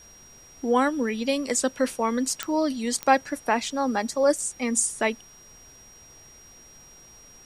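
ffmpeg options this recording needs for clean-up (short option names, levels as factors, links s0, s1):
-af "adeclick=t=4,bandreject=f=5700:w=30,agate=range=0.0891:threshold=0.00794"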